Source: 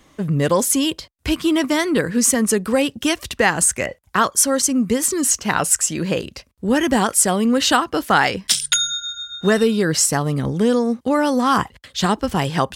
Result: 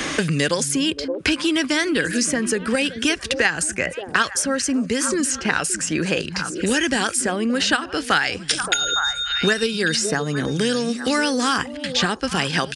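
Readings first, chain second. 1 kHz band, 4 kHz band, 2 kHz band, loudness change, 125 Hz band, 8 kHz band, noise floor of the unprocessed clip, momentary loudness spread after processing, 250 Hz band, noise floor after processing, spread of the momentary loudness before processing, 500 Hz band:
−5.0 dB, +1.5 dB, +2.5 dB, −2.5 dB, −4.0 dB, −5.0 dB, −55 dBFS, 3 LU, −3.5 dB, −35 dBFS, 7 LU, −3.5 dB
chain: notch filter 7,800 Hz, Q 27
in parallel at −0.5 dB: output level in coarse steps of 14 dB
on the sum: parametric band 660 Hz −2.5 dB 0.77 octaves
downsampling to 22,050 Hz
thirty-one-band graphic EQ 125 Hz −7 dB, 200 Hz −5 dB, 1,000 Hz −5 dB, 1,600 Hz +8 dB, 2,500 Hz +5 dB, 5,000 Hz +4 dB
on a send: echo through a band-pass that steps 286 ms, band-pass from 170 Hz, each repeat 1.4 octaves, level −8.5 dB
on the sum: multiband upward and downward compressor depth 100%
level −6 dB

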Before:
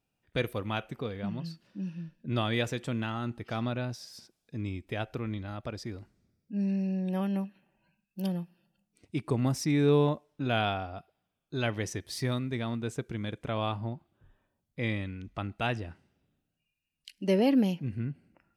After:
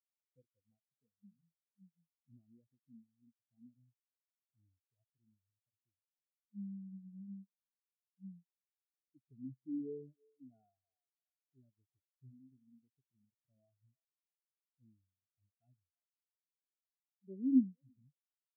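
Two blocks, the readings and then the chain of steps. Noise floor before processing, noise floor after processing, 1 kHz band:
−83 dBFS, below −85 dBFS, below −40 dB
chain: adaptive Wiener filter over 41 samples
feedback echo with a band-pass in the loop 333 ms, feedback 63%, band-pass 800 Hz, level −9 dB
dynamic equaliser 270 Hz, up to +5 dB, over −37 dBFS, Q 1.2
tuned comb filter 130 Hz, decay 0.75 s, harmonics all, mix 40%
in parallel at +2.5 dB: downward compressor, threshold −36 dBFS, peak gain reduction 16 dB
on the sum: leveller curve on the samples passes 1
every bin expanded away from the loudest bin 4 to 1
level −6 dB

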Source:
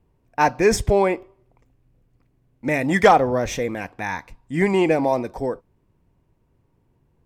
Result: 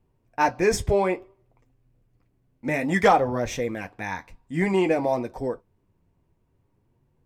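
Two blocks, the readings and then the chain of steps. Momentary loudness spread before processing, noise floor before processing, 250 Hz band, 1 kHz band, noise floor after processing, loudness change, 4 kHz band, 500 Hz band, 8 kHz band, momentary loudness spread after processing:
15 LU, −66 dBFS, −3.5 dB, −4.0 dB, −69 dBFS, −4.0 dB, −4.0 dB, −4.0 dB, −4.0 dB, 14 LU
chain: flanger 0.56 Hz, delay 7.7 ms, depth 4.6 ms, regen −39%

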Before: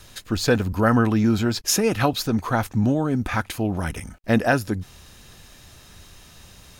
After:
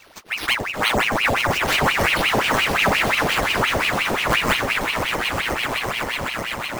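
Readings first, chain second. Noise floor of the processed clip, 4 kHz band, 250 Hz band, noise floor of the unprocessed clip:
−32 dBFS, +10.0 dB, −7.0 dB, −49 dBFS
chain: bad sample-rate conversion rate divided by 6×, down none, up hold
echo that builds up and dies away 126 ms, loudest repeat 8, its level −8.5 dB
ring modulator whose carrier an LFO sweeps 1,500 Hz, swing 80%, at 5.7 Hz

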